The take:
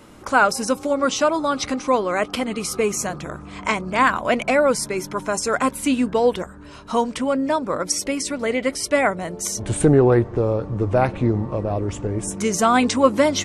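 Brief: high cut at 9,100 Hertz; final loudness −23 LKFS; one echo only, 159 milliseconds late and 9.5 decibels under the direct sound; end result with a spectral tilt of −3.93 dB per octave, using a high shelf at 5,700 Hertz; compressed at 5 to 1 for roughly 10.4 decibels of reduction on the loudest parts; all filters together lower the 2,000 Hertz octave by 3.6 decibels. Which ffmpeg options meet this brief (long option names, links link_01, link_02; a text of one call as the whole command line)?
ffmpeg -i in.wav -af "lowpass=9100,equalizer=frequency=2000:width_type=o:gain=-6,highshelf=frequency=5700:gain=8.5,acompressor=threshold=-22dB:ratio=5,aecho=1:1:159:0.335,volume=3dB" out.wav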